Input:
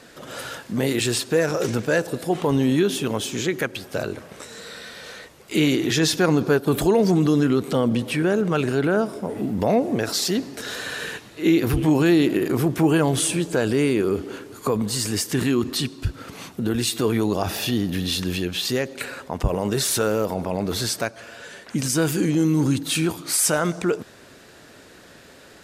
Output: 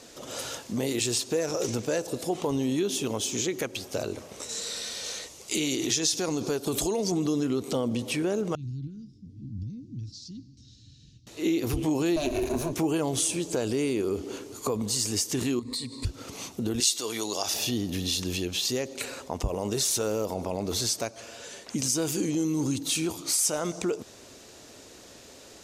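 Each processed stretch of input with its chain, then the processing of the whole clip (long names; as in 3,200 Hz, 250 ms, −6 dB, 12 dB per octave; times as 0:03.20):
0:04.49–0:07.12: high-shelf EQ 3,300 Hz +9.5 dB + downward compressor 2 to 1, threshold −20 dBFS + low-pass filter 11,000 Hz
0:08.55–0:11.27: elliptic band-stop filter 130–4,700 Hz, stop band 80 dB + head-to-tape spacing loss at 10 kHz 42 dB + hollow resonant body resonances 310/490/1,400 Hz, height 14 dB, ringing for 30 ms
0:12.16–0:12.73: lower of the sound and its delayed copy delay 8.3 ms + EQ curve with evenly spaced ripples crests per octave 1.5, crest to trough 10 dB
0:15.59–0:16.05: EQ curve with evenly spaced ripples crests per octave 0.97, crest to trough 15 dB + downward compressor 10 to 1, threshold −28 dBFS
0:16.80–0:17.54: high-pass filter 750 Hz 6 dB per octave + parametric band 5,700 Hz +9 dB 2.3 octaves + notch filter 2,500 Hz, Q 15
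whole clip: graphic EQ with 15 bands 160 Hz −6 dB, 1,600 Hz −9 dB, 6,300 Hz +8 dB; downward compressor 2 to 1, threshold −26 dBFS; level −1.5 dB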